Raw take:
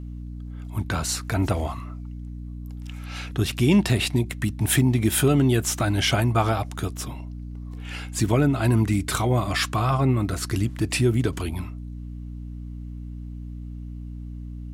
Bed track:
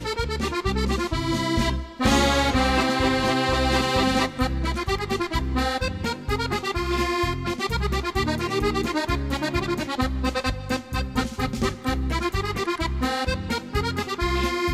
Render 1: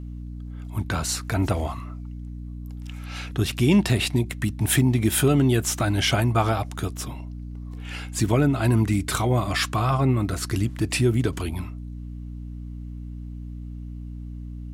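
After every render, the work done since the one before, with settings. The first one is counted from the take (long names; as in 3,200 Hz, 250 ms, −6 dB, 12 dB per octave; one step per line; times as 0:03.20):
no processing that can be heard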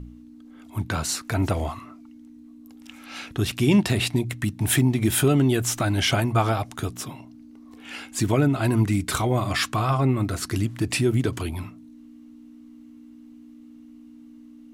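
hum removal 60 Hz, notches 3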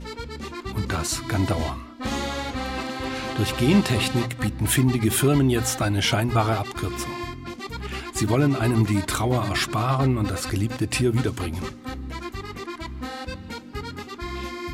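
mix in bed track −8.5 dB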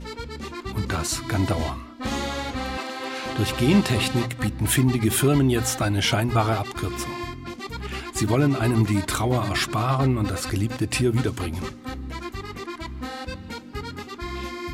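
0:02.77–0:03.26: high-pass filter 340 Hz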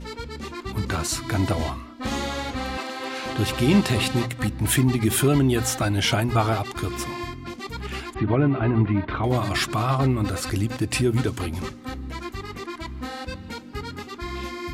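0:08.14–0:09.24: Bessel low-pass filter 2,000 Hz, order 6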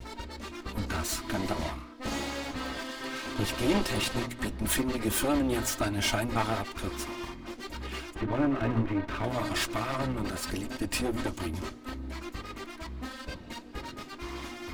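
lower of the sound and its delayed copy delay 3.2 ms
flanger 0.17 Hz, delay 2.9 ms, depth 4.5 ms, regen −62%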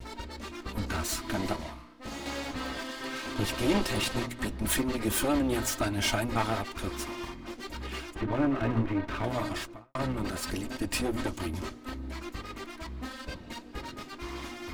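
0:01.56–0:02.26: tuned comb filter 58 Hz, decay 0.85 s
0:09.36–0:09.95: fade out and dull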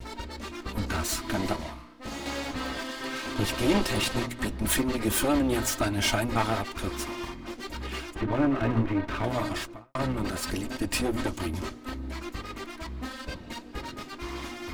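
level +2.5 dB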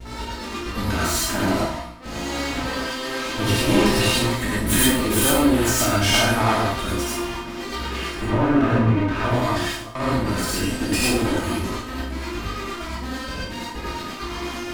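peak hold with a decay on every bin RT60 0.56 s
reverb whose tail is shaped and stops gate 130 ms rising, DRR −4.5 dB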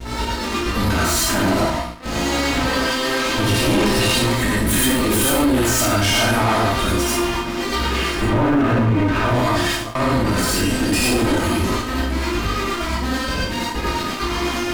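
leveller curve on the samples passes 2
brickwall limiter −11 dBFS, peak gain reduction 6.5 dB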